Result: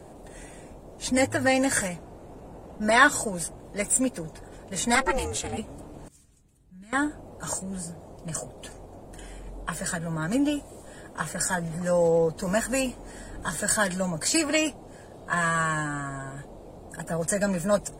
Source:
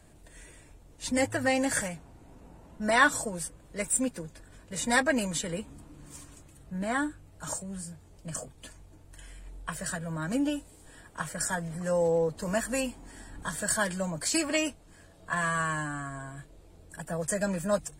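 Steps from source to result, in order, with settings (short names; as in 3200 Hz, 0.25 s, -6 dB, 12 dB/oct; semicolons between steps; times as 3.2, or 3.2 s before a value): 4.95–5.58 ring modulator 270 Hz; band noise 91–740 Hz -51 dBFS; 6.08–6.93 passive tone stack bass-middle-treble 6-0-2; gain +4 dB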